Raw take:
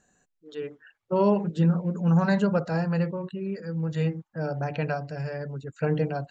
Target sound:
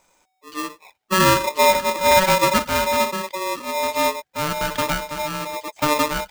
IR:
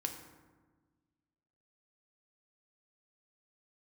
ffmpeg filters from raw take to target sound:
-filter_complex "[0:a]asettb=1/sr,asplit=3[link_01][link_02][link_03];[link_01]atrim=end=1.634[link_04];[link_02]atrim=start=1.63:end=2.19,asetpts=PTS-STARTPTS,afade=type=in:duration=0.004:curve=qsin,afade=type=out:start_time=0.556:duration=0.004:curve=qsin,equalizer=frequency=3200:width_type=o:width=2.8:gain=12.5[link_05];[link_03]atrim=start=2.186[link_06];[link_04][link_05]acrossfade=duration=0.004:curve1=hsin:curve2=qsin[link_07];[link_07][link_06]acrossfade=duration=0.004:curve1=qsin:curve2=hsin,aeval=exprs='val(0)*sgn(sin(2*PI*750*n/s))':channel_layout=same,volume=5.5dB"

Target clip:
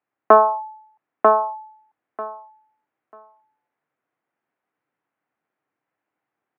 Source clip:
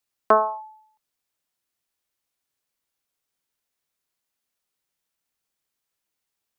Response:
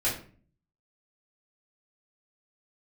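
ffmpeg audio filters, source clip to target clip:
-af "acontrast=85,highpass=frequency=120:width=0.5412,highpass=frequency=120:width=1.3066,equalizer=frequency=190:width_type=q:width=4:gain=-4,equalizer=frequency=300:width_type=q:width=4:gain=5,equalizer=frequency=750:width_type=q:width=4:gain=4,lowpass=frequency=2000:width=0.5412,lowpass=frequency=2000:width=1.3066,aecho=1:1:942|1884|2826:0.708|0.113|0.0181,volume=-1dB"

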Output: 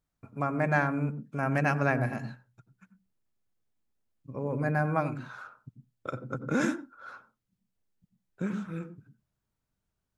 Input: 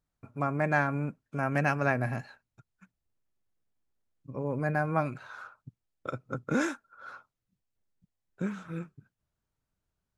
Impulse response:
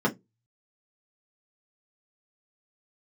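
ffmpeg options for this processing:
-filter_complex "[0:a]asplit=2[link_01][link_02];[1:a]atrim=start_sample=2205,lowshelf=frequency=240:gain=10,adelay=85[link_03];[link_02][link_03]afir=irnorm=-1:irlink=0,volume=-28.5dB[link_04];[link_01][link_04]amix=inputs=2:normalize=0"

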